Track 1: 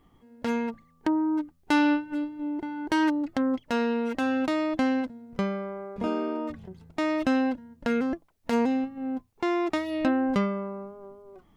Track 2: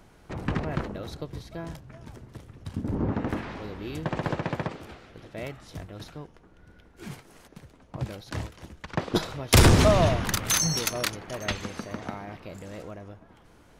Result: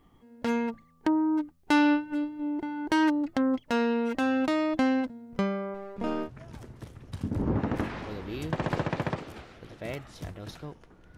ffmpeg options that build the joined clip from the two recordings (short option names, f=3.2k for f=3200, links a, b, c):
-filter_complex "[0:a]asettb=1/sr,asplit=3[a][b][c];[a]atrim=end=5.744[d];[b]atrim=start=5.74:end=6.3,asetpts=PTS-STARTPTS,afade=t=in:d=0.004:c=qsin,afade=t=out:st=0.556:d=0.004:c=qsin,aeval=exprs='if(lt(val(0),0),0.447*val(0),val(0))':c=same[e];[c]atrim=start=6.296[f];[d][e]acrossfade=d=0.004:c1=hsin:c2=qsin[g];[g][f]acrossfade=d=0.004:c1=qsin:c2=hsin,apad=whole_dur=11.17,atrim=end=11.17,atrim=end=6.3,asetpts=PTS-STARTPTS[h];[1:a]atrim=start=1.75:end=6.7,asetpts=PTS-STARTPTS[i];[h][i]acrossfade=d=0.08:c1=tri:c2=tri"